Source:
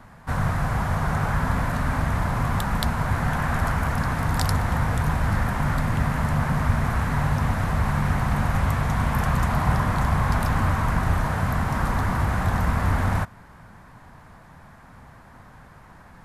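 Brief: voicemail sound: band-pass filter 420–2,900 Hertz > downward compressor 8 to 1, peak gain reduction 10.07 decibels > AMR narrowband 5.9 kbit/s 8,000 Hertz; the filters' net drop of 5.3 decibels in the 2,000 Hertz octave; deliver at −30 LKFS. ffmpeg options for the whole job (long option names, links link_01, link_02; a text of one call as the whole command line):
ffmpeg -i in.wav -af "highpass=420,lowpass=2900,equalizer=frequency=2000:width_type=o:gain=-6.5,acompressor=threshold=-35dB:ratio=8,volume=11.5dB" -ar 8000 -c:a libopencore_amrnb -b:a 5900 out.amr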